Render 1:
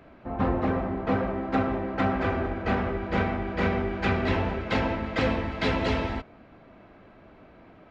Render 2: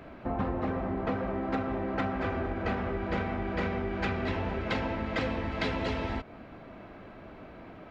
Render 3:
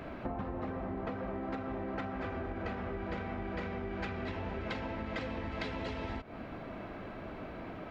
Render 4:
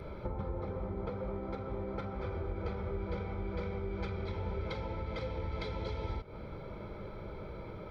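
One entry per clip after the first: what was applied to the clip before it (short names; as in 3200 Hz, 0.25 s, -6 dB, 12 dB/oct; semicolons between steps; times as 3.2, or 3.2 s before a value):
compressor 6:1, threshold -33 dBFS, peak gain reduction 12.5 dB; gain +4.5 dB
compressor 12:1, threshold -38 dBFS, peak gain reduction 13 dB; gain +3.5 dB
reverb, pre-delay 3 ms, DRR 16 dB; gain -2.5 dB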